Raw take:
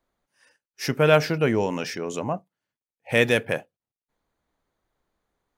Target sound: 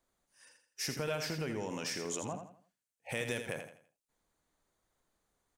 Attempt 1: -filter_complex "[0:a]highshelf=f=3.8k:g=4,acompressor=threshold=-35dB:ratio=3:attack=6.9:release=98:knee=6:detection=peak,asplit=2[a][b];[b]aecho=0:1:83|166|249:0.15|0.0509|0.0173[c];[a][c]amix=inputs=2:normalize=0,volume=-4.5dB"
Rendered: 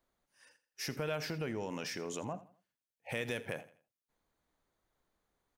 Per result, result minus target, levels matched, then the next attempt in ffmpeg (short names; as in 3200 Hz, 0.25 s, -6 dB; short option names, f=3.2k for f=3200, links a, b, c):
echo-to-direct -9 dB; 8000 Hz band -5.0 dB
-filter_complex "[0:a]highshelf=f=3.8k:g=4,acompressor=threshold=-35dB:ratio=3:attack=6.9:release=98:knee=6:detection=peak,asplit=2[a][b];[b]aecho=0:1:83|166|249|332:0.422|0.143|0.0487|0.0166[c];[a][c]amix=inputs=2:normalize=0,volume=-4.5dB"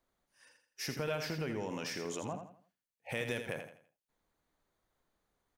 8000 Hz band -4.5 dB
-filter_complex "[0:a]highshelf=f=3.8k:g=4,acompressor=threshold=-35dB:ratio=3:attack=6.9:release=98:knee=6:detection=peak,equalizer=f=8.1k:t=o:w=0.98:g=8,asplit=2[a][b];[b]aecho=0:1:83|166|249|332:0.422|0.143|0.0487|0.0166[c];[a][c]amix=inputs=2:normalize=0,volume=-4.5dB"